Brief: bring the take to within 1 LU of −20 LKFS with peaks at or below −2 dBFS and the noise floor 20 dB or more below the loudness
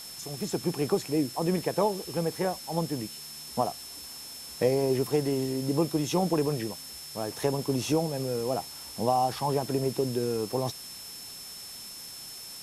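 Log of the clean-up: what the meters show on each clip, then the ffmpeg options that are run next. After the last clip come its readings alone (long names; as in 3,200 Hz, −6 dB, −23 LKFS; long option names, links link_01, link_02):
interfering tone 5,300 Hz; level of the tone −43 dBFS; background noise floor −43 dBFS; target noise floor −50 dBFS; integrated loudness −30.0 LKFS; sample peak −12.5 dBFS; target loudness −20.0 LKFS
→ -af "bandreject=frequency=5300:width=30"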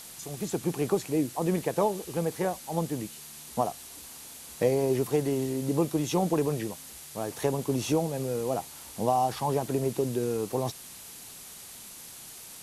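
interfering tone none found; background noise floor −46 dBFS; target noise floor −50 dBFS
→ -af "afftdn=noise_reduction=6:noise_floor=-46"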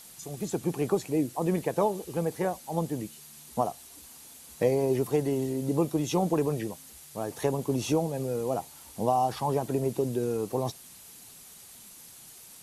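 background noise floor −50 dBFS; integrated loudness −29.5 LKFS; sample peak −12.5 dBFS; target loudness −20.0 LKFS
→ -af "volume=9.5dB"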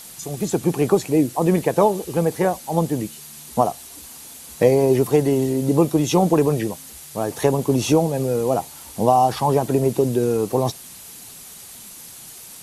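integrated loudness −20.0 LKFS; sample peak −3.0 dBFS; background noise floor −41 dBFS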